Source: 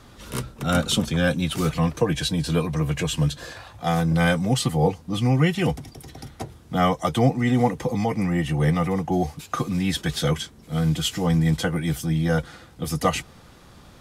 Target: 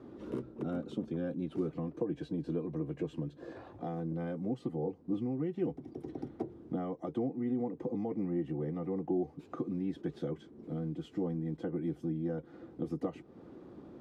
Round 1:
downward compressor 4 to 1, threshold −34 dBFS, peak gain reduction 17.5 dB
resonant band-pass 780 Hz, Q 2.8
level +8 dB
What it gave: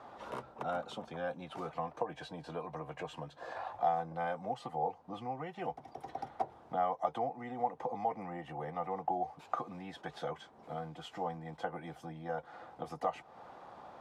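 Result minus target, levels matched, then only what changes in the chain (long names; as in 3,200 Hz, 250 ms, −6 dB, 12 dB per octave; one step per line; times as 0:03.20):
1,000 Hz band +16.0 dB
change: resonant band-pass 330 Hz, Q 2.8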